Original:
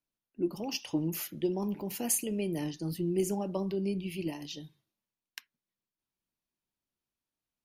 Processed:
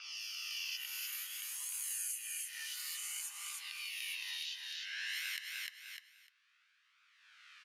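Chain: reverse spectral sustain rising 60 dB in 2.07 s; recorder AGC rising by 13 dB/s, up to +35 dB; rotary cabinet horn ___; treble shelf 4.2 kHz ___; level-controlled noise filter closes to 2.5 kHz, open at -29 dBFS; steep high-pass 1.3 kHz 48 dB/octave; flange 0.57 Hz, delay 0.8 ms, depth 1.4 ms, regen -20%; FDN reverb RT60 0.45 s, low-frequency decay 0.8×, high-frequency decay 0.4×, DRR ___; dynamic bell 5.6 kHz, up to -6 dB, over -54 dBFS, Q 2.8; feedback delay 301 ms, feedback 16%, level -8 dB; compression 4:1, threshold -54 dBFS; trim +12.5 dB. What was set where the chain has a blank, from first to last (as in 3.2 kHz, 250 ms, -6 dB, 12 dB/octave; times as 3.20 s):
0.9 Hz, -2.5 dB, 11.5 dB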